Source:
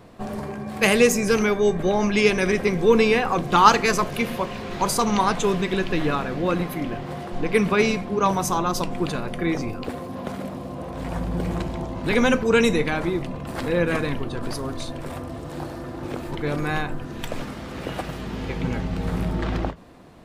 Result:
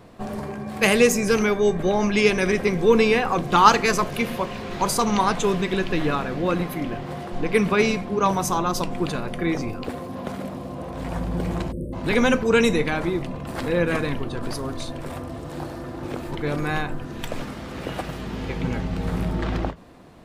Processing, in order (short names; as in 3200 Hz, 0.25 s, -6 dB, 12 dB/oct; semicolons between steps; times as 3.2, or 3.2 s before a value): spectral delete 11.72–11.93, 610–8000 Hz